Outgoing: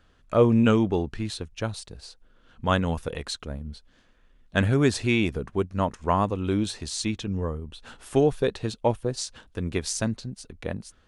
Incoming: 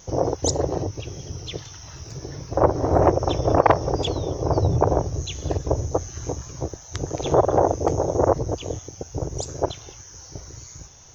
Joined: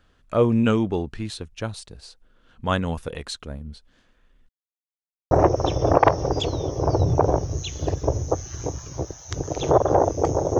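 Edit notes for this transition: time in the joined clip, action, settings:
outgoing
0:04.49–0:05.31: silence
0:05.31: continue with incoming from 0:02.94

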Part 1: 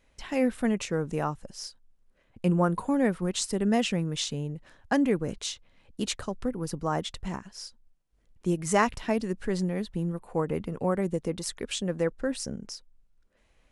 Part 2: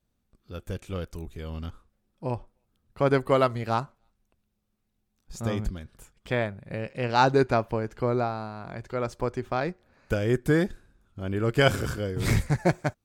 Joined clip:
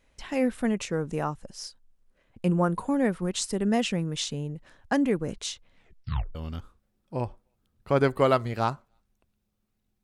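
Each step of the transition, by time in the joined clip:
part 1
0:05.76: tape stop 0.59 s
0:06.35: continue with part 2 from 0:01.45

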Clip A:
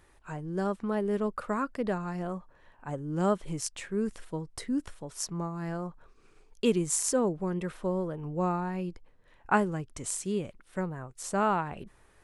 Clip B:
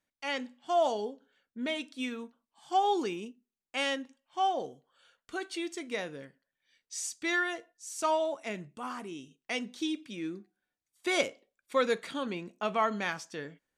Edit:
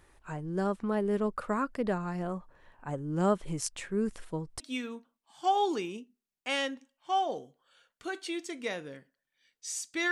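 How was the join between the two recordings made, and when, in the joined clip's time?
clip A
0:04.60: continue with clip B from 0:01.88

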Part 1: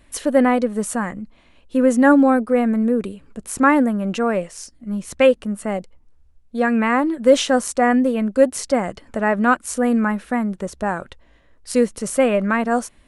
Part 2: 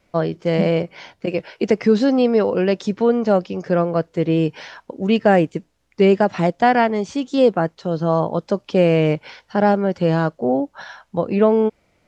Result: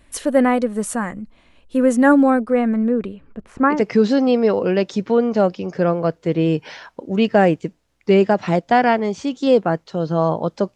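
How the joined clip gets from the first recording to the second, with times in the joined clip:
part 1
0:02.30–0:03.85: low-pass filter 8,600 Hz → 1,400 Hz
0:03.75: continue with part 2 from 0:01.66, crossfade 0.20 s

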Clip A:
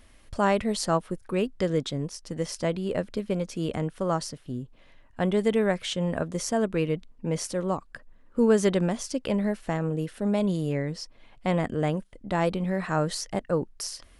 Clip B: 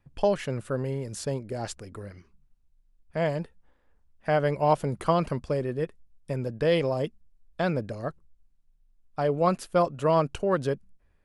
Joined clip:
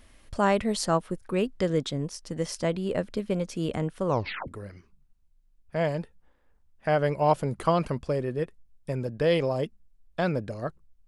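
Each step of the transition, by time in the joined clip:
clip A
0:04.06: tape stop 0.42 s
0:04.48: continue with clip B from 0:01.89

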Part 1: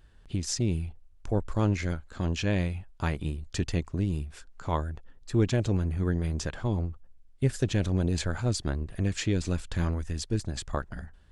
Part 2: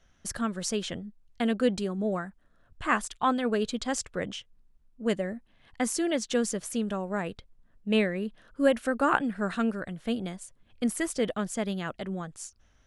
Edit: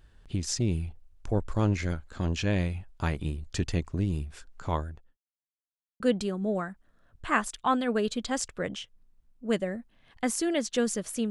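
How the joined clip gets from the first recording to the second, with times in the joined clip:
part 1
0:04.70–0:05.17: fade out linear
0:05.17–0:06.00: silence
0:06.00: continue with part 2 from 0:01.57

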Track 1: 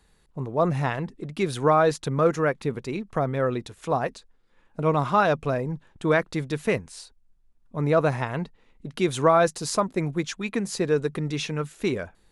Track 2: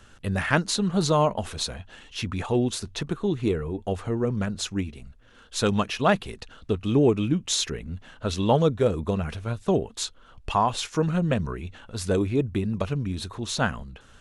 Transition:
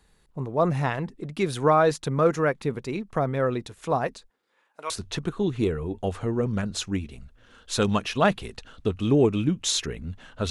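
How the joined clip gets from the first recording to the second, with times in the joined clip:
track 1
0:04.28–0:04.90: high-pass filter 200 Hz → 1,200 Hz
0:04.90: continue with track 2 from 0:02.74

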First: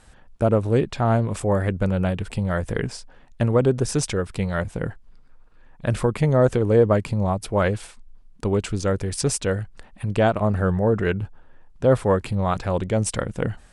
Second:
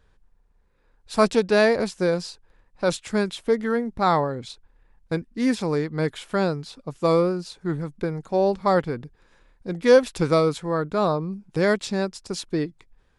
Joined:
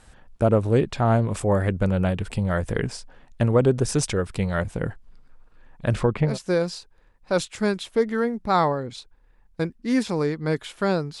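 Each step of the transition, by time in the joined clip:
first
0:05.90–0:06.38: low-pass filter 9,700 Hz → 1,300 Hz
0:06.30: continue with second from 0:01.82, crossfade 0.16 s

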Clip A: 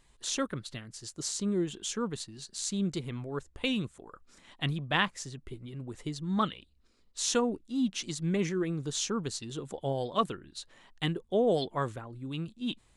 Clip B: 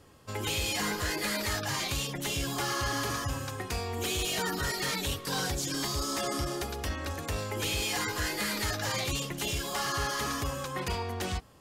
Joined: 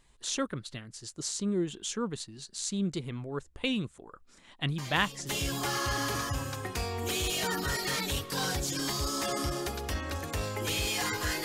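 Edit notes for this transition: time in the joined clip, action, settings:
clip A
0:04.78: mix in clip B from 0:01.73 0.51 s −10.5 dB
0:05.29: continue with clip B from 0:02.24

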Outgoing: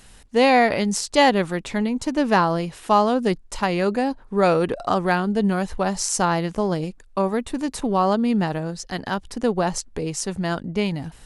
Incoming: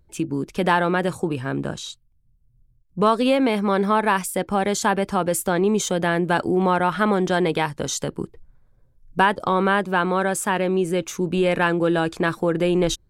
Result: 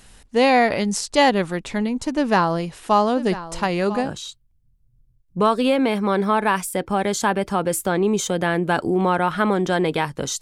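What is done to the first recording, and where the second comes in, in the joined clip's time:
outgoing
0:02.17–0:04.11: single-tap delay 996 ms −14.5 dB
0:04.06: continue with incoming from 0:01.67, crossfade 0.10 s

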